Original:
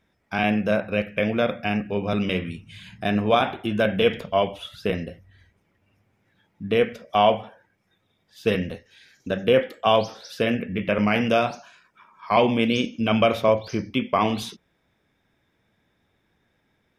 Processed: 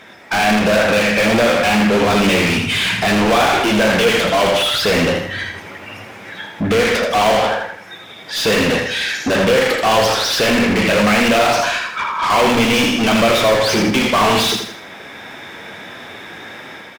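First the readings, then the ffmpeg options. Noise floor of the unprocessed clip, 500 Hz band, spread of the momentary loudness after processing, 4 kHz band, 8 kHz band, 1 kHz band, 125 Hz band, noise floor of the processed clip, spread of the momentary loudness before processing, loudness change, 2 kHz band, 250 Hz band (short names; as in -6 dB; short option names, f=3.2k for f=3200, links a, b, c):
-70 dBFS, +7.0 dB, 19 LU, +14.0 dB, n/a, +9.0 dB, +6.5 dB, -36 dBFS, 11 LU, +8.5 dB, +13.5 dB, +8.0 dB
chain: -filter_complex "[0:a]bandreject=f=60:t=h:w=6,bandreject=f=120:t=h:w=6,dynaudnorm=f=380:g=3:m=7dB,flanger=delay=7.5:depth=4.1:regen=-42:speed=1.5:shape=triangular,asplit=2[a][b];[b]highpass=f=720:p=1,volume=39dB,asoftclip=type=tanh:threshold=-12.5dB[c];[a][c]amix=inputs=2:normalize=0,lowpass=f=4.7k:p=1,volume=-6dB,aecho=1:1:81|162|243|324|405:0.501|0.195|0.0762|0.0297|0.0116,volume=3dB"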